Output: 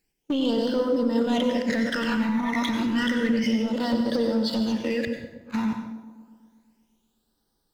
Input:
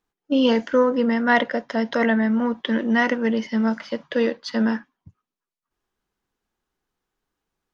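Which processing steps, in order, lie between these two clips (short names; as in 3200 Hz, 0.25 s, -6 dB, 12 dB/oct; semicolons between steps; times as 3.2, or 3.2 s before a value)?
reverse delay 0.573 s, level -6 dB; high shelf 2400 Hz +9.5 dB; notch 1100 Hz, Q 13; sample leveller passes 2; limiter -17 dBFS, peak gain reduction 14 dB; phaser stages 12, 0.3 Hz, lowest notch 500–2400 Hz; compressor 6:1, threshold -31 dBFS, peak gain reduction 11 dB; overloaded stage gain 27.5 dB; on a send: band-limited delay 0.122 s, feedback 67%, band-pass 430 Hz, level -11.5 dB; on the sum: plate-style reverb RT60 0.71 s, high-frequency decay 0.9×, pre-delay 80 ms, DRR 6 dB; gain +7.5 dB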